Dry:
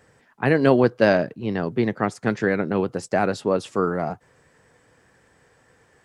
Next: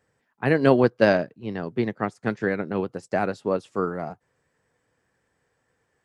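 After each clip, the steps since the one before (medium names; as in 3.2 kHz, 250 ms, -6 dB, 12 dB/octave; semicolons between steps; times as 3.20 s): upward expansion 1.5:1, over -40 dBFS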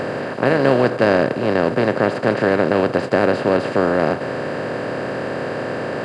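spectral levelling over time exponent 0.2; trim -2 dB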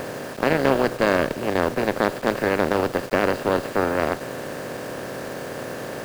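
Chebyshev shaper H 4 -17 dB, 7 -25 dB, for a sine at -1 dBFS; bit crusher 6-bit; trim -4 dB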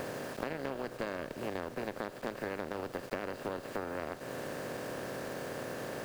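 compression, threshold -26 dBFS, peak gain reduction 13 dB; trim -7.5 dB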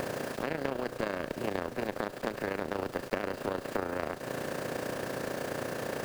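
AM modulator 29 Hz, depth 45%; trim +7 dB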